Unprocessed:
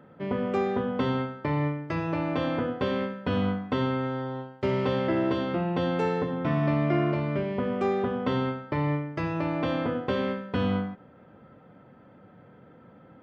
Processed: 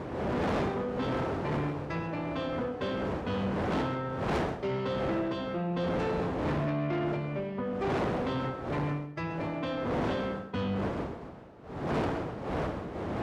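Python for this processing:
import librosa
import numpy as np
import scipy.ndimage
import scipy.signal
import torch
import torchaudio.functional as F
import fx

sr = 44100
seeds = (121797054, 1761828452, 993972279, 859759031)

y = fx.bin_expand(x, sr, power=1.5)
y = fx.dmg_wind(y, sr, seeds[0], corner_hz=550.0, level_db=-29.0)
y = 10.0 ** (-26.5 / 20.0) * np.tanh(y / 10.0 ** (-26.5 / 20.0))
y = scipy.signal.sosfilt(scipy.signal.butter(2, 52.0, 'highpass', fs=sr, output='sos'), y)
y = y + 10.0 ** (-13.0 / 20.0) * np.pad(y, (int(132 * sr / 1000.0), 0))[:len(y)]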